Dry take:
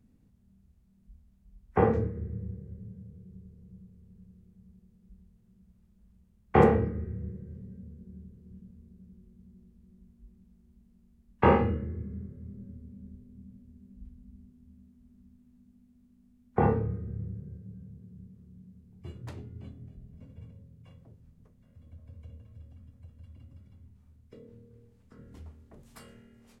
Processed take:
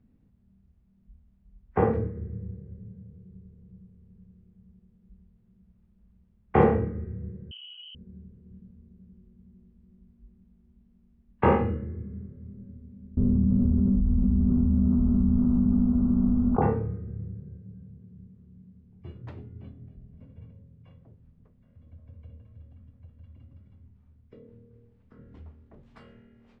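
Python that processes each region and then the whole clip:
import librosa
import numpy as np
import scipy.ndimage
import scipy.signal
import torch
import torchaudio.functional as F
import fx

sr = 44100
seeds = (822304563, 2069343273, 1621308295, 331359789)

y = fx.chain(x, sr, fx.leveller(passes=1),
    fx.freq_invert(carrier_hz=3100), at=(7.51, 7.95))
y = fx.chain(y, sr, fx.steep_lowpass(hz=1400.0, slope=96),
    fx.hum_notches(base_hz=60, count=10),
    fx.env_flatten(amount_pct=100), at=(13.17, 16.62))
y = scipy.signal.sosfilt(scipy.signal.cheby1(2, 1.0, 3200.0, 'lowpass', fs=sr, output='sos'), y)
y = fx.high_shelf(y, sr, hz=2600.0, db=-8.0)
y = y * librosa.db_to_amplitude(1.5)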